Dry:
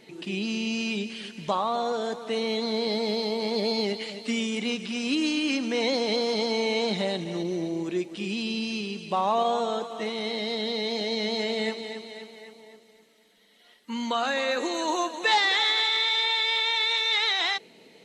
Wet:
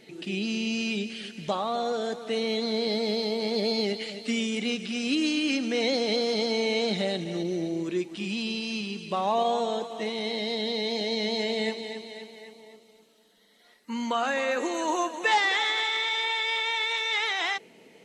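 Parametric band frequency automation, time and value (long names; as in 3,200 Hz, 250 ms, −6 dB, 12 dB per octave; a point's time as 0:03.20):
parametric band −11 dB 0.29 octaves
0:07.74 1,000 Hz
0:08.62 240 Hz
0:09.32 1,300 Hz
0:12.44 1,300 Hz
0:14.17 4,000 Hz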